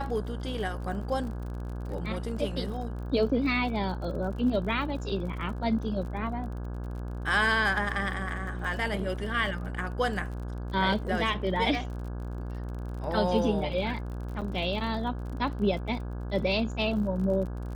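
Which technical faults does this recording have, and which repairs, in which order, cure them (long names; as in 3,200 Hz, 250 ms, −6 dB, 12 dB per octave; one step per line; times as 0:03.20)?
mains buzz 60 Hz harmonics 28 −35 dBFS
surface crackle 41 per second −38 dBFS
0:14.41–0:14.42: drop-out 7.5 ms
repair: click removal
hum removal 60 Hz, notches 28
repair the gap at 0:14.41, 7.5 ms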